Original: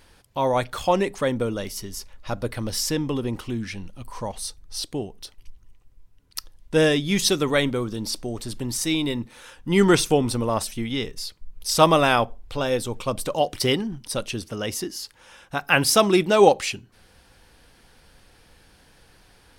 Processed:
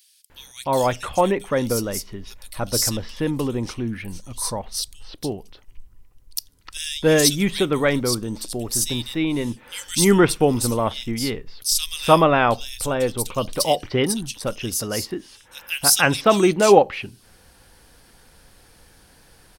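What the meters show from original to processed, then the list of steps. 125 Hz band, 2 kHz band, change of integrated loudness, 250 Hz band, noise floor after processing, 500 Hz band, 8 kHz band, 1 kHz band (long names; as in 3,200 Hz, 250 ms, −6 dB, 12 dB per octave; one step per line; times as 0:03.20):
+2.0 dB, +1.0 dB, +2.0 dB, +2.0 dB, −53 dBFS, +2.0 dB, +6.0 dB, +2.0 dB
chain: high-shelf EQ 7,700 Hz +8 dB
multiband delay without the direct sound highs, lows 300 ms, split 2,900 Hz
level +2 dB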